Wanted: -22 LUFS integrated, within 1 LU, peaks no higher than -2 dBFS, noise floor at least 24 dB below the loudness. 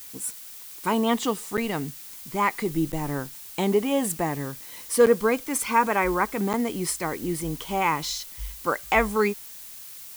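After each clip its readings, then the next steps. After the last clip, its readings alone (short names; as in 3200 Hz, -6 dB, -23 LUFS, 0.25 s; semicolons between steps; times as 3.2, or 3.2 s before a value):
dropouts 4; longest dropout 7.9 ms; noise floor -42 dBFS; noise floor target -50 dBFS; loudness -25.5 LUFS; peak -7.0 dBFS; loudness target -22.0 LUFS
-> interpolate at 1.57/2.92/5.06/6.53, 7.9 ms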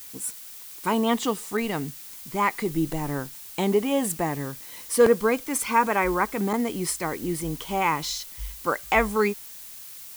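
dropouts 0; noise floor -42 dBFS; noise floor target -50 dBFS
-> noise print and reduce 8 dB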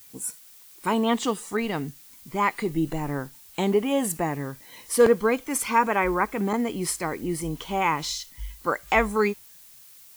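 noise floor -50 dBFS; loudness -25.5 LUFS; peak -7.5 dBFS; loudness target -22.0 LUFS
-> gain +3.5 dB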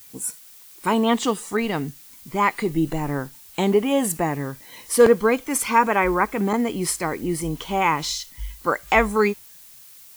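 loudness -22.0 LUFS; peak -4.0 dBFS; noise floor -46 dBFS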